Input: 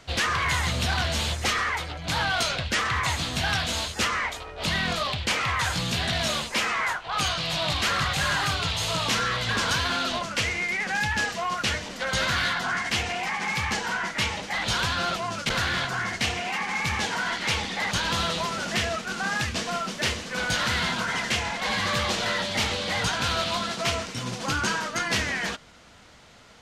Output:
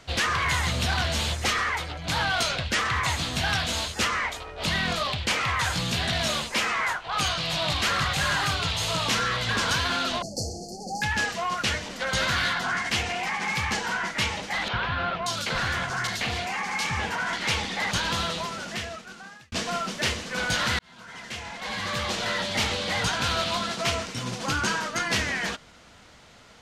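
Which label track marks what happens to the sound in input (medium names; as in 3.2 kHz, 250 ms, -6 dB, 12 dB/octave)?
10.220000	11.020000	brick-wall FIR band-stop 850–4200 Hz
14.680000	17.330000	three bands offset in time mids, lows, highs 50/580 ms, splits 270/3200 Hz
17.950000	19.520000	fade out
20.790000	22.550000	fade in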